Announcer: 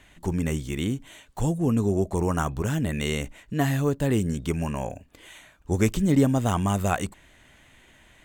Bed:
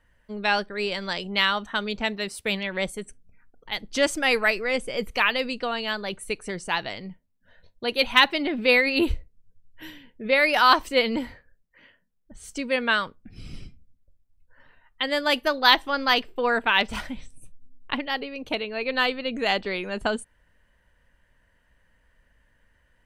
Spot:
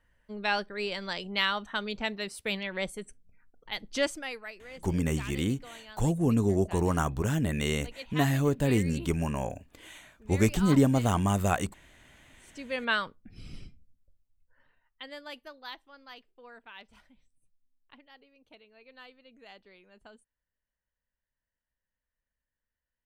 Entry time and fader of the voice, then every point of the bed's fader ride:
4.60 s, -2.0 dB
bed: 4.02 s -5.5 dB
4.41 s -21 dB
12.2 s -21 dB
12.92 s -5 dB
14.09 s -5 dB
15.84 s -27.5 dB

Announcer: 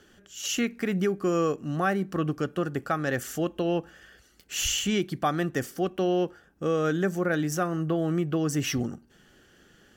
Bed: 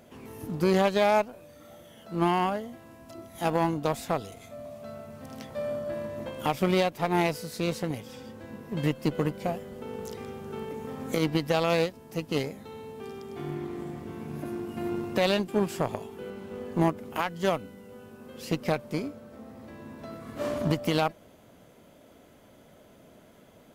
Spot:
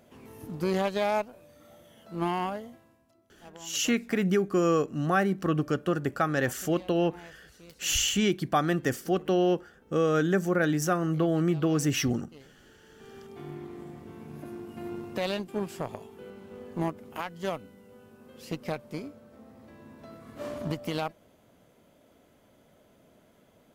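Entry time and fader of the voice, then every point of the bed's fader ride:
3.30 s, +1.0 dB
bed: 2.68 s -4.5 dB
3.2 s -23.5 dB
12.72 s -23.5 dB
13.18 s -6 dB

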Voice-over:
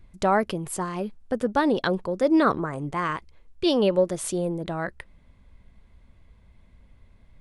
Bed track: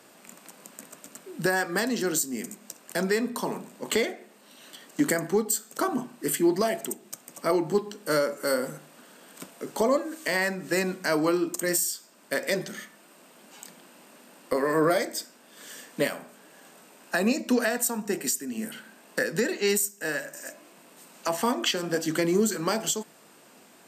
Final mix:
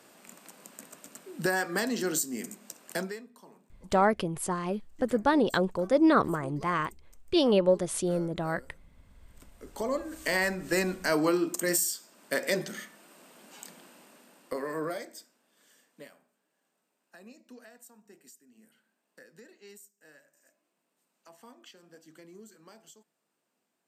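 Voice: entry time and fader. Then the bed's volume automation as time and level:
3.70 s, -2.0 dB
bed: 2.96 s -3 dB
3.28 s -24 dB
8.91 s -24 dB
10.28 s -1.5 dB
13.83 s -1.5 dB
16.46 s -27 dB

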